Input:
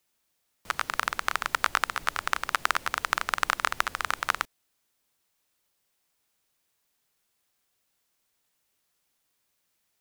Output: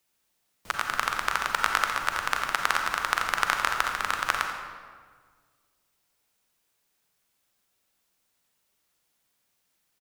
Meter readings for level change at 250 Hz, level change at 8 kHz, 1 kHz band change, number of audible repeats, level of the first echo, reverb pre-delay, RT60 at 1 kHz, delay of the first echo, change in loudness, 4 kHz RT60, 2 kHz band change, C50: +2.0 dB, +1.0 dB, +2.0 dB, 1, −13.0 dB, 36 ms, 1.6 s, 87 ms, +1.5 dB, 1.1 s, +2.0 dB, 4.0 dB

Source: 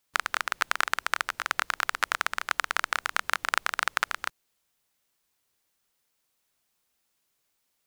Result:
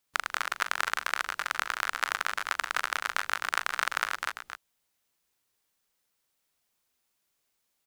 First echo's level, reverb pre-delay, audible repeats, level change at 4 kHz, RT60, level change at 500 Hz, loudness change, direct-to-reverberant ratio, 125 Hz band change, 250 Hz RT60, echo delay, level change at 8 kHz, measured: −12.5 dB, no reverb audible, 2, −2.0 dB, no reverb audible, −2.0 dB, −2.0 dB, no reverb audible, can't be measured, no reverb audible, 40 ms, −2.0 dB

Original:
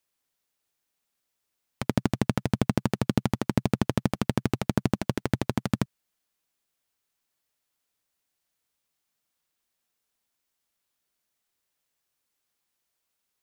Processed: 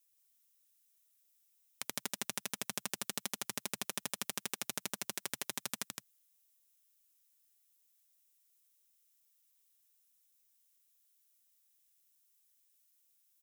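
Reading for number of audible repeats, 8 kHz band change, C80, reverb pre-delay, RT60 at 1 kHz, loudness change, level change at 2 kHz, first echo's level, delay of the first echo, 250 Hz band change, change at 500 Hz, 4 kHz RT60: 1, +5.0 dB, no reverb audible, no reverb audible, no reverb audible, −11.5 dB, −6.5 dB, −4.0 dB, 165 ms, −24.5 dB, −18.0 dB, no reverb audible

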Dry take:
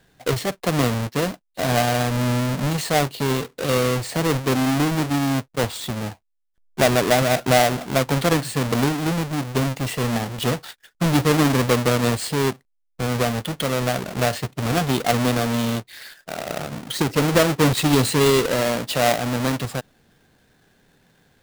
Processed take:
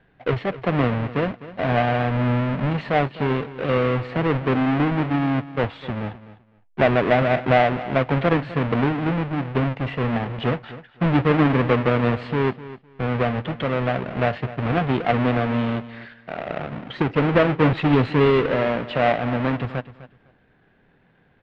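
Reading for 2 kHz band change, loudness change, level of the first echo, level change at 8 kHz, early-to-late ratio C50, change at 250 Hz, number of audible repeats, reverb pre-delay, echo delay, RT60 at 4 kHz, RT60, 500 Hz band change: −0.5 dB, −0.5 dB, −16.0 dB, below −30 dB, no reverb audible, 0.0 dB, 2, no reverb audible, 254 ms, no reverb audible, no reverb audible, 0.0 dB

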